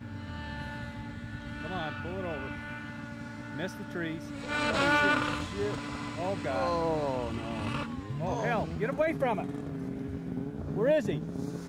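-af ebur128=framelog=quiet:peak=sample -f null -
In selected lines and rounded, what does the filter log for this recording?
Integrated loudness:
  I:         -32.5 LUFS
  Threshold: -42.5 LUFS
Loudness range:
  LRA:         8.4 LU
  Threshold: -52.1 LUFS
  LRA low:   -38.2 LUFS
  LRA high:  -29.7 LUFS
Sample peak:
  Peak:      -13.8 dBFS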